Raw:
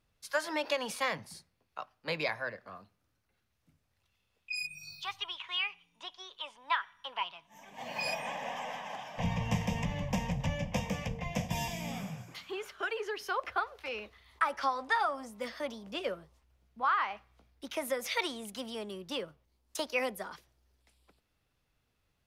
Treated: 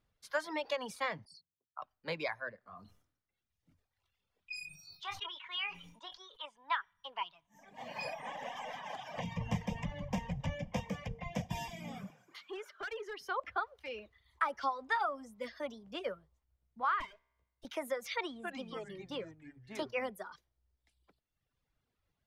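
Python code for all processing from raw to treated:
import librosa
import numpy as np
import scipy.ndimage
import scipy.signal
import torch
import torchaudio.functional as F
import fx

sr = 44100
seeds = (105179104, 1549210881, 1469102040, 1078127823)

y = fx.chain(x, sr, fx.envelope_sharpen(power=3.0),
    fx.highpass(hz=300.0, slope=6),
    fx.peak_eq(hz=9100.0, db=-5.0, octaves=0.3), at=(1.25, 1.82))
y = fx.chain(y, sr, fx.doubler(ms=23.0, db=-10.0),
    fx.sustainer(db_per_s=70.0), at=(2.61, 6.46))
y = fx.chain(y, sr, fx.peak_eq(hz=200.0, db=-4.0, octaves=0.24),
    fx.band_squash(depth_pct=100), at=(8.04, 9.37))
y = fx.chain(y, sr, fx.highpass(hz=270.0, slope=12),
    fx.clip_hard(threshold_db=-34.0), at=(12.1, 13.2))
y = fx.chain(y, sr, fx.lower_of_two(delay_ms=1.9),
    fx.comb_fb(f0_hz=66.0, decay_s=1.1, harmonics='all', damping=0.0, mix_pct=40), at=(17.0, 17.65))
y = fx.chain(y, sr, fx.high_shelf(hz=5000.0, db=-8.0),
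    fx.echo_pitch(ms=274, semitones=-5, count=2, db_per_echo=-6.0), at=(18.16, 20.1))
y = fx.notch(y, sr, hz=2600.0, q=16.0)
y = fx.dereverb_blind(y, sr, rt60_s=1.2)
y = fx.high_shelf(y, sr, hz=5100.0, db=-8.0)
y = y * librosa.db_to_amplitude(-2.5)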